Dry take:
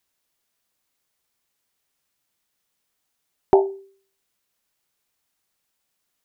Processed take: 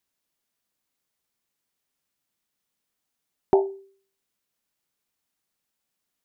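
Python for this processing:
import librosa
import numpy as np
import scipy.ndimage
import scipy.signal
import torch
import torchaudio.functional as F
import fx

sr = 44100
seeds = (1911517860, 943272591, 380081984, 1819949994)

y = fx.peak_eq(x, sr, hz=220.0, db=4.5, octaves=1.4)
y = y * 10.0 ** (-5.5 / 20.0)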